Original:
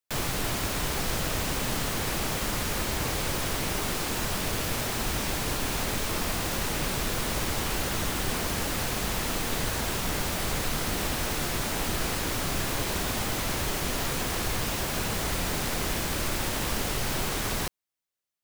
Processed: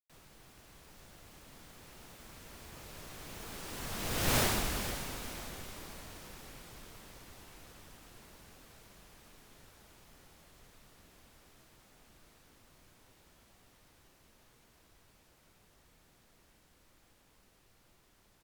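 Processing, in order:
source passing by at 0:04.38, 32 m/s, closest 3.7 metres
echo with shifted repeats 466 ms, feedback 36%, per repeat −37 Hz, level −13 dB
level +2.5 dB

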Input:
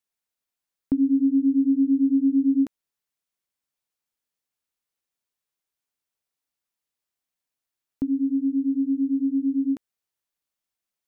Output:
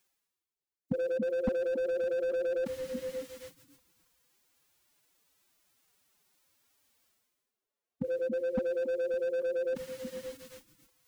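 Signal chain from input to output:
reversed playback
upward compression, threshold −40 dBFS
reversed playback
echo through a band-pass that steps 280 ms, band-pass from 160 Hz, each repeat 0.7 octaves, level −7 dB
phase-vocoder pitch shift with formants kept +11 semitones
slew-rate limiting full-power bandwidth 41 Hz
level −7 dB

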